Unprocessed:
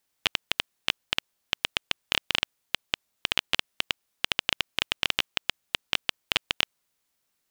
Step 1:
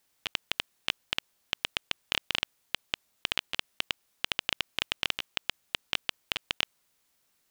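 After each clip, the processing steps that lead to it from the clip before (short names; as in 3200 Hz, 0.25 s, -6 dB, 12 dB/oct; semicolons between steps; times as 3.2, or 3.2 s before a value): negative-ratio compressor -30 dBFS, ratio -1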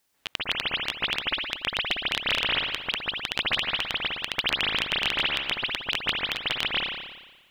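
reverb RT60 1.2 s, pre-delay 0.139 s, DRR -7.5 dB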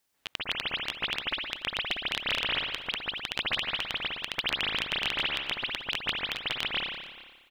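echo 0.435 s -20.5 dB; gain -4 dB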